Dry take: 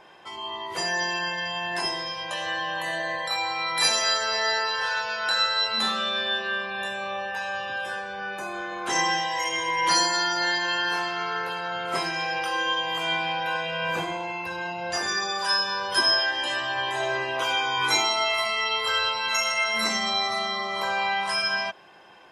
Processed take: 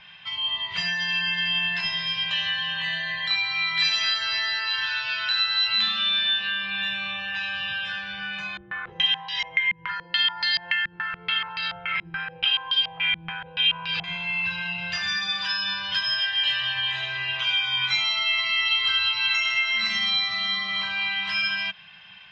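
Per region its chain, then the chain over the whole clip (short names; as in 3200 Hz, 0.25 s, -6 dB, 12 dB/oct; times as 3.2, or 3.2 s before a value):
8.57–14.04 comb 2.3 ms, depth 55% + stepped low-pass 7 Hz 310–4700 Hz
whole clip: LPF 3700 Hz 24 dB/oct; compressor, threshold -28 dBFS; EQ curve 190 Hz 0 dB, 280 Hz -29 dB, 810 Hz -15 dB, 2700 Hz +7 dB; gain +5 dB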